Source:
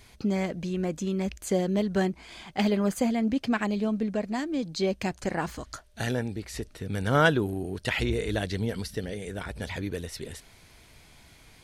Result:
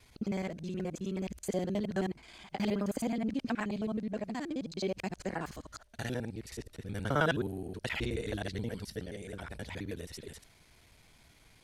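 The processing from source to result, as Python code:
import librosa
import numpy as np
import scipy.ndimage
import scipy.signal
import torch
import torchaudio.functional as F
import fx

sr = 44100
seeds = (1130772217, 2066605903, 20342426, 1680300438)

y = fx.local_reverse(x, sr, ms=53.0)
y = y * librosa.db_to_amplitude(-7.0)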